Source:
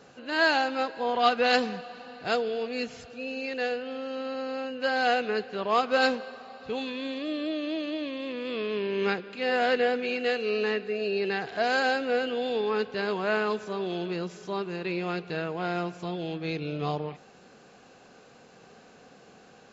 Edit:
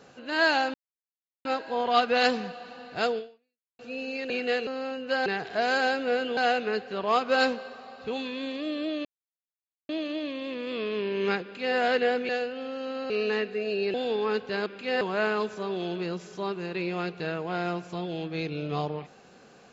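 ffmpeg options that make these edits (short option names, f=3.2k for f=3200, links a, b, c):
-filter_complex "[0:a]asplit=13[a][b][c][d][e][f][g][h][i][j][k][l][m];[a]atrim=end=0.74,asetpts=PTS-STARTPTS,afade=t=out:st=0.736:d=0.004:c=hsin,apad=pad_dur=0.71[n];[b]atrim=start=0.74:end=3.08,asetpts=PTS-STARTPTS,afade=t=in:d=0.004:c=hsin,afade=t=out:st=1.72:d=0.62:c=exp[o];[c]atrim=start=3.08:end=3.592,asetpts=PTS-STARTPTS,afade=t=in:d=0.004:c=hsin[p];[d]atrim=start=10.068:end=10.442[q];[e]atrim=start=4.398:end=4.992[r];[f]atrim=start=11.278:end=12.392[s];[g]atrim=start=4.988:end=7.67,asetpts=PTS-STARTPTS,afade=t=out:st=2.678:d=0.004:c=hsin,apad=pad_dur=0.84[t];[h]atrim=start=7.67:end=10.072,asetpts=PTS-STARTPTS,afade=t=in:d=0.004:c=hsin[u];[i]atrim=start=3.588:end=4.402[v];[j]atrim=start=10.438:end=11.282[w];[k]atrim=start=12.388:end=13.112[x];[l]atrim=start=9.198:end=9.552[y];[m]atrim=start=13.108[z];[n][o][p]concat=n=3:v=0:a=1[aa];[aa][q]acrossfade=d=0.004:c1=hsin:c2=hsin[ab];[ab][r]acrossfade=d=0.004:c1=hsin:c2=hsin[ac];[ac][s]acrossfade=d=0.004:c1=hsin:c2=hsin[ad];[t][u]concat=n=2:v=0:a=1[ae];[ad][ae]acrossfade=d=0.004:c1=hsin:c2=hsin[af];[af][v]acrossfade=d=0.004:c1=hsin:c2=hsin[ag];[ag][w]acrossfade=d=0.004:c1=hsin:c2=hsin[ah];[ah][x]acrossfade=d=0.004:c1=hsin:c2=hsin[ai];[ai][y]acrossfade=d=0.004:c1=hsin:c2=hsin[aj];[aj][z]acrossfade=d=0.004:c1=hsin:c2=hsin"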